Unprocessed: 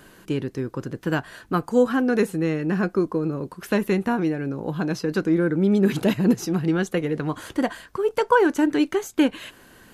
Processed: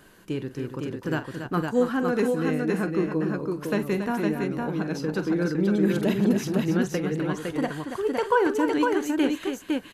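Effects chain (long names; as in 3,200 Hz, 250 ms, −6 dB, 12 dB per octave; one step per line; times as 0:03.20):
multi-tap delay 45/279/509 ms −12.5/−8.5/−3.5 dB
level −4.5 dB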